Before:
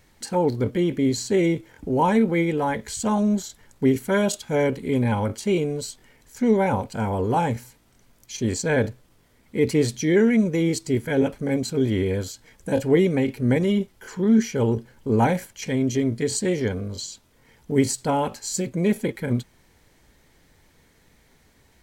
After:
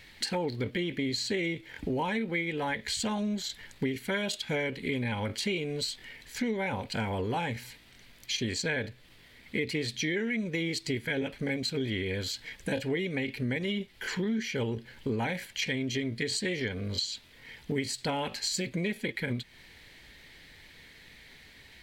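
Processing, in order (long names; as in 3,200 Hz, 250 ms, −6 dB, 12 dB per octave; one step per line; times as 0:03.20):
flat-topped bell 2,800 Hz +12 dB
downward compressor 6 to 1, threshold −29 dBFS, peak gain reduction 16 dB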